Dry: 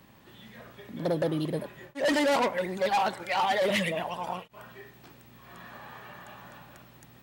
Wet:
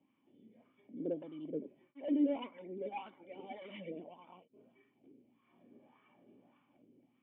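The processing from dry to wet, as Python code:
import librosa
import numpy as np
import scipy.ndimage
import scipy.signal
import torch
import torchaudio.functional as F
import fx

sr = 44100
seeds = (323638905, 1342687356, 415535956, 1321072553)

y = fx.wah_lfo(x, sr, hz=1.7, low_hz=420.0, high_hz=1200.0, q=4.1)
y = fx.cheby_harmonics(y, sr, harmonics=(3, 7), levels_db=(-22, -44), full_scale_db=-19.5)
y = fx.formant_cascade(y, sr, vowel='i')
y = y * 10.0 ** (15.0 / 20.0)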